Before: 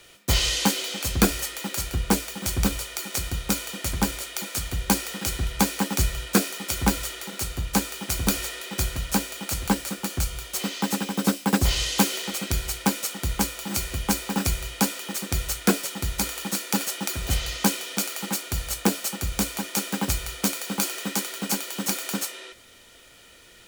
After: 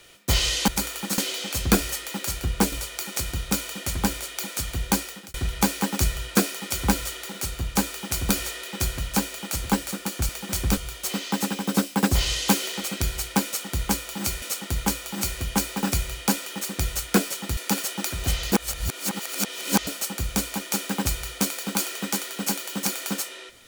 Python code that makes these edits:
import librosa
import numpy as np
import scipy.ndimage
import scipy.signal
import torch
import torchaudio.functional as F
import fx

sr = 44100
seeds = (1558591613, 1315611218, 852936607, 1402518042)

y = fx.edit(x, sr, fx.move(start_s=2.22, length_s=0.48, to_s=10.27),
    fx.fade_out_span(start_s=4.75, length_s=0.57, curve='qsin'),
    fx.repeat(start_s=12.95, length_s=0.97, count=2),
    fx.move(start_s=16.1, length_s=0.5, to_s=0.68),
    fx.reverse_span(start_s=17.55, length_s=1.35), tone=tone)